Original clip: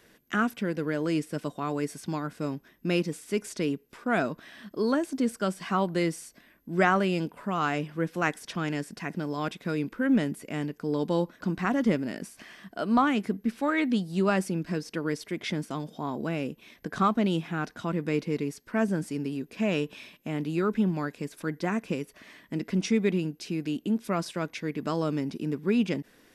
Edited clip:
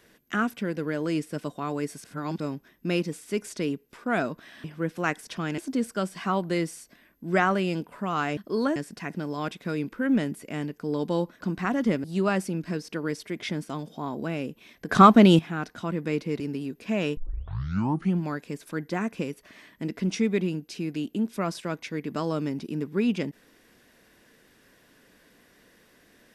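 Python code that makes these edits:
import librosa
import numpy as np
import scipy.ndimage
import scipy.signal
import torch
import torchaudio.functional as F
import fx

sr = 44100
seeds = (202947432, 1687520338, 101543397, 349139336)

y = fx.edit(x, sr, fx.reverse_span(start_s=2.04, length_s=0.36),
    fx.swap(start_s=4.64, length_s=0.39, other_s=7.82, other_length_s=0.94),
    fx.cut(start_s=12.04, length_s=2.01),
    fx.clip_gain(start_s=16.9, length_s=0.5, db=10.5),
    fx.cut(start_s=18.41, length_s=0.7),
    fx.tape_start(start_s=19.88, length_s=1.05), tone=tone)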